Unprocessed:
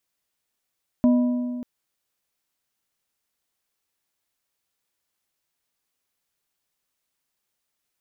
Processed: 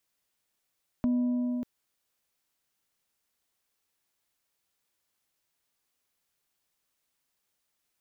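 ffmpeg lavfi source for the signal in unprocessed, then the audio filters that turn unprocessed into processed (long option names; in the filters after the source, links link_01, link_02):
-f lavfi -i "aevalsrc='0.224*pow(10,-3*t/2.08)*sin(2*PI*246*t)+0.0631*pow(10,-3*t/1.58)*sin(2*PI*615*t)+0.0178*pow(10,-3*t/1.372)*sin(2*PI*984*t)':duration=0.59:sample_rate=44100"
-filter_complex "[0:a]acrossover=split=290[link_01][link_02];[link_02]acompressor=threshold=-35dB:ratio=6[link_03];[link_01][link_03]amix=inputs=2:normalize=0,alimiter=limit=-21dB:level=0:latency=1:release=494"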